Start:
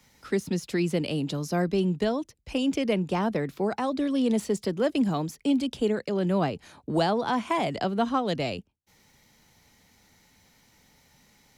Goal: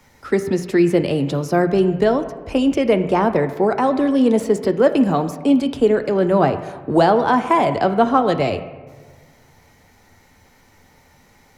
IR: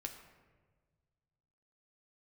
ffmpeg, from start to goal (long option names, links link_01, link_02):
-filter_complex "[0:a]bandreject=frequency=60:width_type=h:width=6,bandreject=frequency=120:width_type=h:width=6,bandreject=frequency=180:width_type=h:width=6,asplit=2[link_01][link_02];[link_02]equalizer=frequency=200:width=2.5:gain=-14[link_03];[1:a]atrim=start_sample=2205,asetrate=43659,aresample=44100,lowpass=2100[link_04];[link_03][link_04]afir=irnorm=-1:irlink=0,volume=6.5dB[link_05];[link_01][link_05]amix=inputs=2:normalize=0,volume=4dB"